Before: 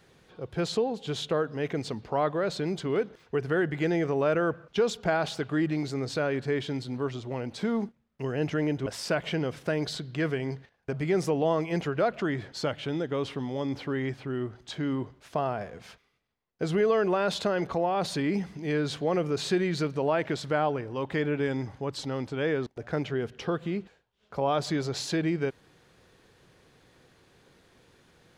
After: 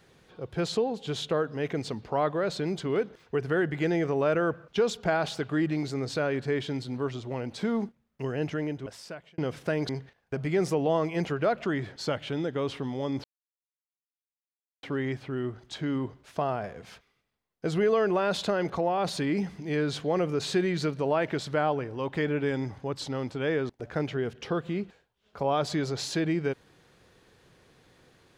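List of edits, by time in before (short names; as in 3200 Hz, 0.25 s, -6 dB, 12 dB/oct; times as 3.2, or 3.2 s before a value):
8.23–9.38 fade out
9.89–10.45 cut
13.8 insert silence 1.59 s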